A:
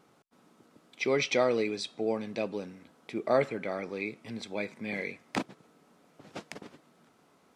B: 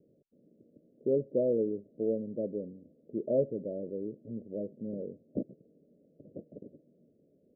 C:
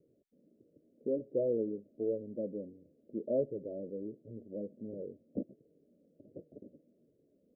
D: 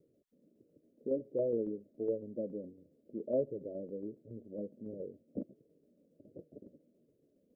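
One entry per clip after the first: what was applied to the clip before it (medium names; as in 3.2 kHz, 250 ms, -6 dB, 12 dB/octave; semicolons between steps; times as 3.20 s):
steep low-pass 610 Hz 96 dB/octave
flange 1.4 Hz, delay 2 ms, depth 2.2 ms, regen -44%
tremolo saw down 7.2 Hz, depth 45%; trim +1 dB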